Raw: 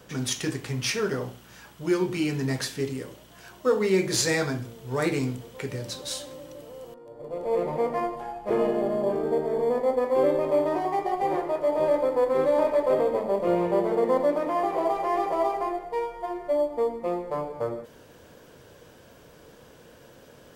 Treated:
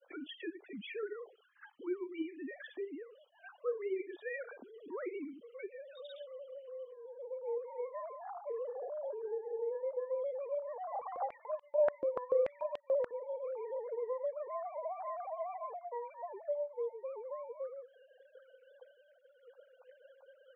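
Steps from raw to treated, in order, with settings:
three sine waves on the formant tracks
downward expander −55 dBFS
downward compressor 2 to 1, threshold −51 dBFS, peak gain reduction 20.5 dB
spectral peaks only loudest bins 32
0:10.87–0:13.11: high-pass on a step sequencer 6.9 Hz 320–3,000 Hz
level +1.5 dB

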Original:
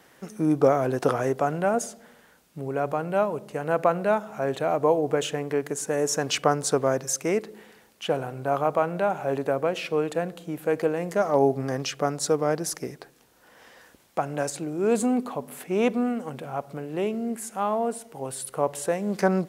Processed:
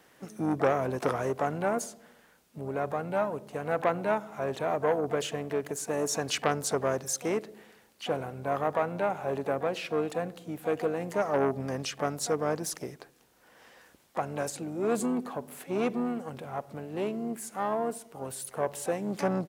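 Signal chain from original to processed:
pitch-shifted copies added −7 semitones −17 dB, +7 semitones −13 dB
saturating transformer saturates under 1,100 Hz
level −4.5 dB

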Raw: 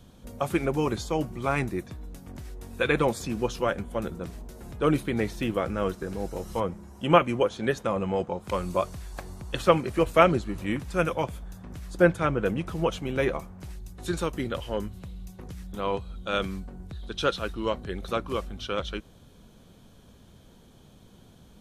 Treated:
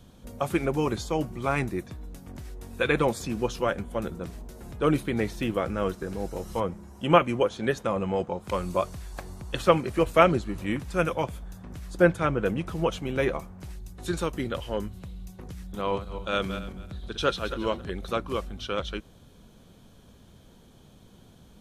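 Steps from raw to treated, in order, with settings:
0:15.64–0:17.90: feedback delay that plays each chunk backwards 136 ms, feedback 41%, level −9.5 dB

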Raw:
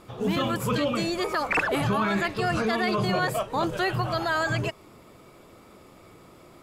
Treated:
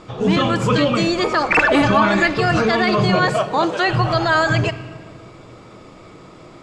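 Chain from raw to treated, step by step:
low-pass filter 7,300 Hz 24 dB per octave
0:01.59–0:02.37: comb filter 3.4 ms, depth 71%
0:03.29–0:03.87: high-pass filter 150 Hz → 390 Hz 12 dB per octave
rectangular room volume 2,300 cubic metres, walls mixed, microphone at 0.56 metres
level +8.5 dB

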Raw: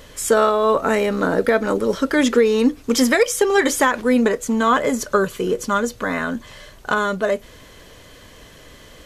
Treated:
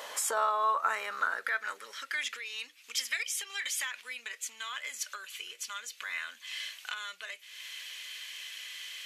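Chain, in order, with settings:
downward compressor 3 to 1, threshold −34 dBFS, peak gain reduction 17 dB
high-pass filter sweep 770 Hz → 2,500 Hz, 0:00.05–0:02.47
level +1.5 dB

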